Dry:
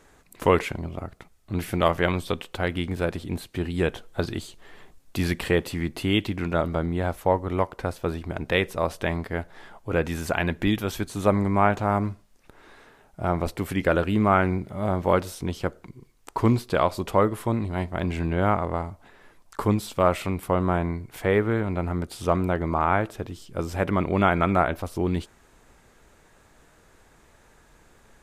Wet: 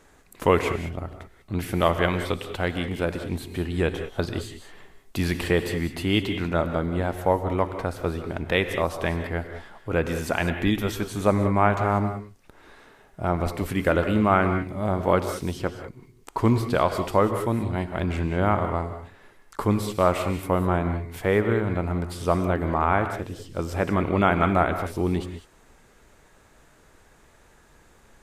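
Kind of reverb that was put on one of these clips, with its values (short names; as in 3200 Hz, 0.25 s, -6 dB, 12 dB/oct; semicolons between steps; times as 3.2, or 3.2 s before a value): non-linear reverb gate 0.22 s rising, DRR 8 dB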